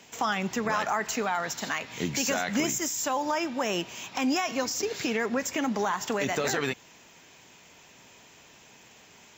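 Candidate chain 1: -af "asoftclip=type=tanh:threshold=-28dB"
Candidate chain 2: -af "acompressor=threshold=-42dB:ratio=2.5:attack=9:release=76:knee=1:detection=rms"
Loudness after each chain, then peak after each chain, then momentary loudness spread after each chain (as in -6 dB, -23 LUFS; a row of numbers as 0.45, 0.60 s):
-33.0, -39.0 LUFS; -28.0, -24.5 dBFS; 21, 14 LU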